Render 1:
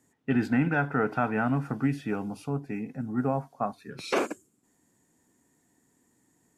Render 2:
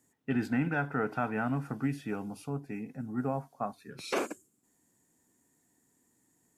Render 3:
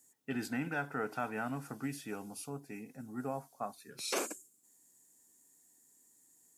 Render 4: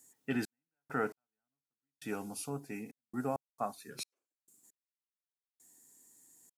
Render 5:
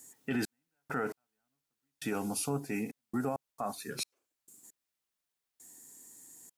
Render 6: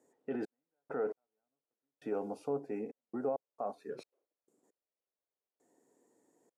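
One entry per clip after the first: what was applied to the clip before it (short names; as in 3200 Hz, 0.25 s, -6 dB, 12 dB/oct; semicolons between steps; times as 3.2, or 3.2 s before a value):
high shelf 7500 Hz +8 dB; gain -5 dB
tone controls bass -6 dB, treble +13 dB; gain -4.5 dB
step gate "xx..x....xxxx.x." 67 bpm -60 dB; gain +3.5 dB
limiter -32.5 dBFS, peak gain reduction 11 dB; gain +8.5 dB
band-pass 500 Hz, Q 2.3; gain +4.5 dB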